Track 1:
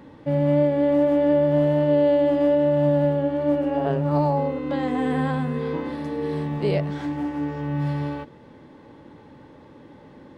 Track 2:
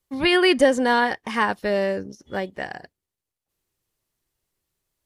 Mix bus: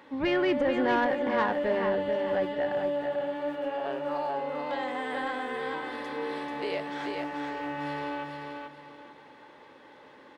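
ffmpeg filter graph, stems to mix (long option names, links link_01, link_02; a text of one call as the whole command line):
ffmpeg -i stem1.wav -i stem2.wav -filter_complex "[0:a]bass=frequency=250:gain=-13,treble=frequency=4000:gain=-7,acompressor=threshold=-26dB:ratio=2.5,tiltshelf=frequency=860:gain=-6.5,volume=-2dB,asplit=2[link_01][link_02];[link_02]volume=-4dB[link_03];[1:a]lowpass=2000,alimiter=limit=-12dB:level=0:latency=1:release=131,volume=-4dB,asplit=2[link_04][link_05];[link_05]volume=-7dB[link_06];[link_03][link_06]amix=inputs=2:normalize=0,aecho=0:1:437|874|1311|1748:1|0.28|0.0784|0.022[link_07];[link_01][link_04][link_07]amix=inputs=3:normalize=0,bandreject=frequency=50:width_type=h:width=6,bandreject=frequency=100:width_type=h:width=6,bandreject=frequency=150:width_type=h:width=6,bandreject=frequency=200:width_type=h:width=6,asoftclip=type=tanh:threshold=-17.5dB" out.wav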